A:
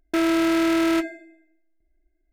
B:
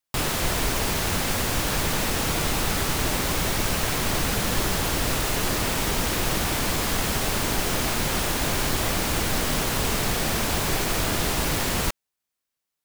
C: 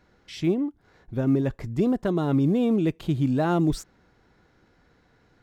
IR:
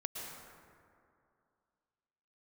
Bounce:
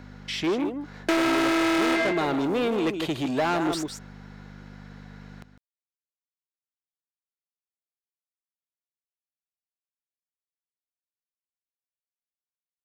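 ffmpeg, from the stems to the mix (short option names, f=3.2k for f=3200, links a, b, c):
-filter_complex "[0:a]lowpass=9.4k,adelay=950,volume=-0.5dB,asplit=2[a][b];[b]volume=-18dB[c];[2:a]aeval=exprs='val(0)+0.0112*(sin(2*PI*50*n/s)+sin(2*PI*2*50*n/s)/2+sin(2*PI*3*50*n/s)/3+sin(2*PI*4*50*n/s)/4+sin(2*PI*5*50*n/s)/5)':c=same,volume=-8dB,asplit=2[d][e];[e]volume=-10dB[f];[c][f]amix=inputs=2:normalize=0,aecho=0:1:154:1[g];[a][d][g]amix=inputs=3:normalize=0,asplit=2[h][i];[i]highpass=f=720:p=1,volume=27dB,asoftclip=type=tanh:threshold=-12.5dB[j];[h][j]amix=inputs=2:normalize=0,lowpass=f=7.4k:p=1,volume=-6dB,acrossover=split=300|2800[k][l][m];[k]acompressor=threshold=-36dB:ratio=4[n];[l]acompressor=threshold=-21dB:ratio=4[o];[m]acompressor=threshold=-35dB:ratio=4[p];[n][o][p]amix=inputs=3:normalize=0"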